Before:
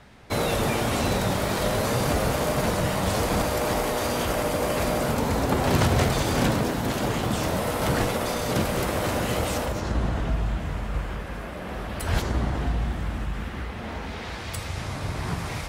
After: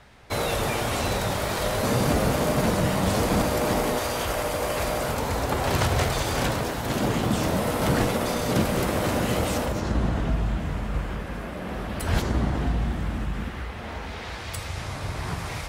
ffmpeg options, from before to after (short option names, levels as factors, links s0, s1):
-af "asetnsamples=n=441:p=0,asendcmd='1.83 equalizer g 4;3.99 equalizer g -7;6.9 equalizer g 3.5;13.51 equalizer g -4',equalizer=f=220:t=o:w=1.5:g=-5.5"